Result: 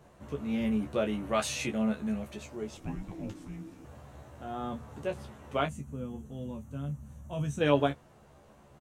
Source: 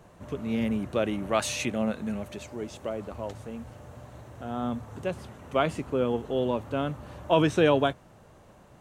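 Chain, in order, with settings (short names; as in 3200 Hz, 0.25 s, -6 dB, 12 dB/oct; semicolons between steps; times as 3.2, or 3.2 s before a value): 5.66–7.61 spectral gain 270–5700 Hz -15 dB; on a send: early reflections 14 ms -4.5 dB, 28 ms -9.5 dB; 2.77–3.85 on the sum: frequency shift -400 Hz; gain -5 dB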